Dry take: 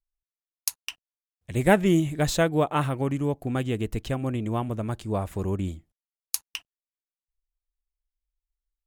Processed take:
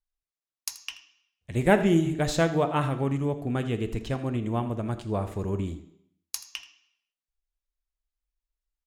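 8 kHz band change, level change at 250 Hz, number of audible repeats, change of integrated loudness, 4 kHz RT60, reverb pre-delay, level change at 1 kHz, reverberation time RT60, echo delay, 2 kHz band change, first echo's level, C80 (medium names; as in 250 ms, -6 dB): -4.5 dB, -1.0 dB, 1, -1.0 dB, 0.70 s, 4 ms, -1.0 dB, 0.70 s, 81 ms, -1.5 dB, -16.0 dB, 13.0 dB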